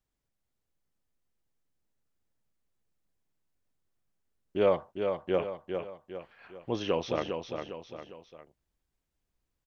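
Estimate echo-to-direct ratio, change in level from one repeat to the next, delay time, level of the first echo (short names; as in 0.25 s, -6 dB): -5.0 dB, -7.0 dB, 0.404 s, -6.0 dB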